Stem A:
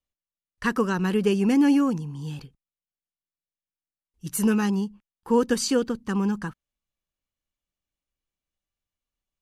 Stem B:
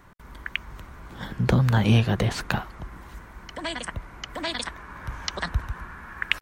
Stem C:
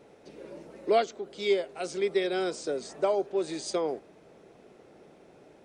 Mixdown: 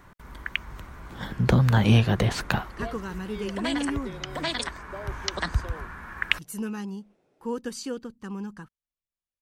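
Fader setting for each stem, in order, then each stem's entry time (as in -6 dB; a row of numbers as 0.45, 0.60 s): -10.5, +0.5, -14.0 dB; 2.15, 0.00, 1.90 s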